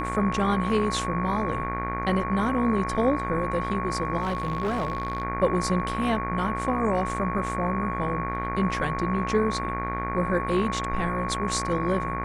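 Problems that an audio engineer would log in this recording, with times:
buzz 60 Hz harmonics 40 -32 dBFS
whine 1.1 kHz -30 dBFS
4.21–5.23 s: clipped -22.5 dBFS

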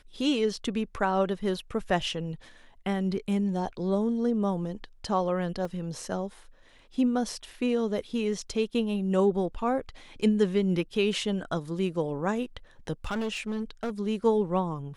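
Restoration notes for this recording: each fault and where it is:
5.65 s: dropout 2.6 ms
13.04–13.90 s: clipped -27 dBFS

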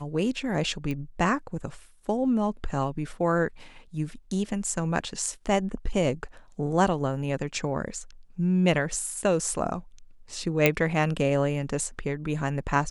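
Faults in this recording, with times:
0.91 s: pop -20 dBFS
10.66 s: pop -5 dBFS

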